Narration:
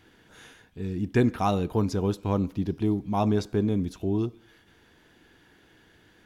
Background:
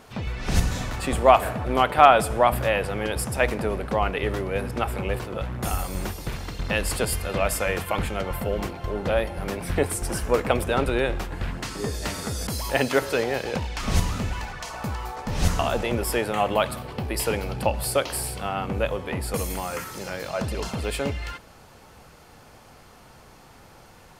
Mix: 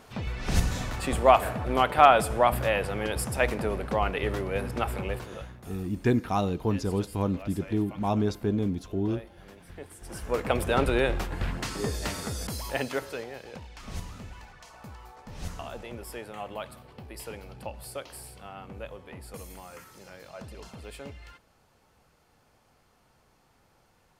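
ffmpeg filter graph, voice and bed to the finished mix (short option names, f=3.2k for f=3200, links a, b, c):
-filter_complex "[0:a]adelay=4900,volume=-2dB[a];[1:a]volume=16.5dB,afade=t=out:st=4.92:d=0.72:silence=0.133352,afade=t=in:st=9.98:d=0.8:silence=0.105925,afade=t=out:st=11.75:d=1.56:silence=0.199526[b];[a][b]amix=inputs=2:normalize=0"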